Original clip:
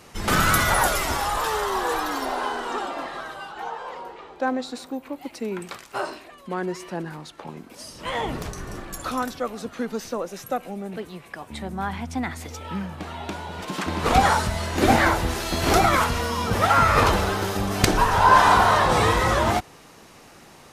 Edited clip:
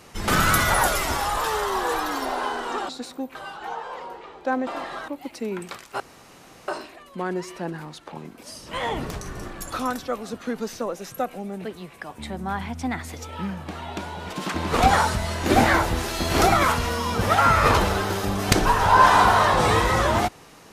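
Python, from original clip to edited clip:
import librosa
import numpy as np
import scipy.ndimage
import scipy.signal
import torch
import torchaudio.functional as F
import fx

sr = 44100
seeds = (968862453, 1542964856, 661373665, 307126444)

y = fx.edit(x, sr, fx.swap(start_s=2.89, length_s=0.41, other_s=4.62, other_length_s=0.46),
    fx.insert_room_tone(at_s=6.0, length_s=0.68), tone=tone)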